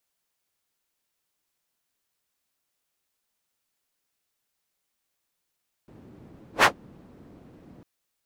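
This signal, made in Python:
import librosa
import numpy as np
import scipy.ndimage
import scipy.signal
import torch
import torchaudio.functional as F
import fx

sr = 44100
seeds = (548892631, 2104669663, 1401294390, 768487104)

y = fx.whoosh(sr, seeds[0], length_s=1.95, peak_s=0.76, rise_s=0.11, fall_s=0.11, ends_hz=220.0, peak_hz=1400.0, q=1.1, swell_db=36)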